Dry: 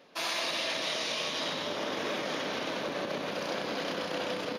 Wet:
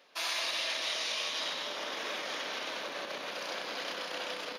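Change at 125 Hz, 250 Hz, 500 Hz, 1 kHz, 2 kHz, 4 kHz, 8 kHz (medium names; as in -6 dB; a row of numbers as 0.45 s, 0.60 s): -16.5 dB, -12.0 dB, -7.0 dB, -3.5 dB, -1.0 dB, -0.5 dB, 0.0 dB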